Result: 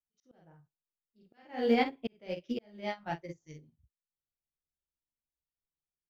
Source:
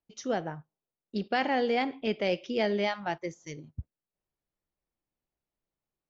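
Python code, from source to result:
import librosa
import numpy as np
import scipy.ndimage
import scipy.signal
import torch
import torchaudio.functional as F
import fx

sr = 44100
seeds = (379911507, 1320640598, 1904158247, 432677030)

p1 = fx.low_shelf(x, sr, hz=190.0, db=11.5)
p2 = p1 + fx.room_early_taps(p1, sr, ms=(13, 48, 65), db=(-5.5, -3.5, -17.0), dry=0)
p3 = fx.auto_swell(p2, sr, attack_ms=445.0)
p4 = fx.quant_float(p3, sr, bits=6)
y = fx.upward_expand(p4, sr, threshold_db=-35.0, expansion=2.5)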